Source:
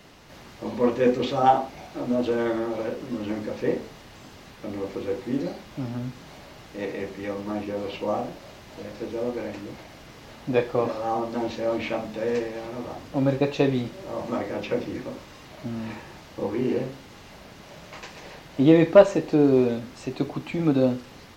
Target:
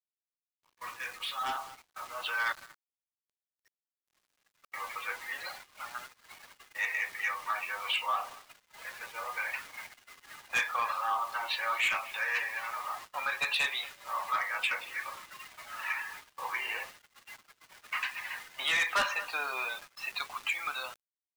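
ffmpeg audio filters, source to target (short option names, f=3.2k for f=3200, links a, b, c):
-filter_complex "[0:a]adynamicequalizer=threshold=0.01:dfrequency=1700:dqfactor=1.2:tfrequency=1700:tqfactor=1.2:attack=5:release=100:ratio=0.375:range=2:mode=cutabove:tftype=bell,asettb=1/sr,asplit=3[a][b][c];[a]atrim=end=2.524[d];[b]atrim=start=2.52:end=4.72,asetpts=PTS-STARTPTS,afade=t=in:d=0.004:c=qsin,afade=t=out:st=2.196:d=0.004:c=qsin,acompressor=threshold=-42dB:ratio=12[e];[c]atrim=start=4.716[f];[d][e]acrossfade=d=0.004:c1=hsin:c2=qsin[g];[g][f]acrossfade=d=0.004:c1=qsin:c2=hsin,lowpass=4.8k,afftdn=nr=17:nf=-42,asuperpass=centerf=2900:order=8:qfactor=0.54,asplit=2[h][i];[i]adelay=230,highpass=300,lowpass=3.4k,asoftclip=type=hard:threshold=-26dB,volume=-23dB[j];[h][j]amix=inputs=2:normalize=0,asoftclip=type=tanh:threshold=-35dB,dynaudnorm=f=880:g=5:m=15dB,acrusher=bits=7:mix=0:aa=0.000001,alimiter=limit=-23dB:level=0:latency=1:release=346,agate=range=-21dB:threshold=-46dB:ratio=16:detection=peak"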